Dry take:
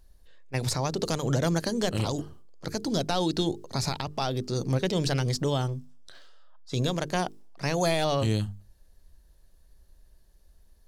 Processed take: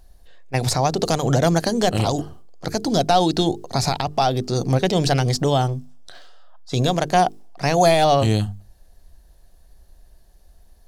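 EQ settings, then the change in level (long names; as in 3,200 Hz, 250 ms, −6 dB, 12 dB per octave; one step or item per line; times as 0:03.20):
parametric band 730 Hz +9.5 dB 0.3 octaves
+7.0 dB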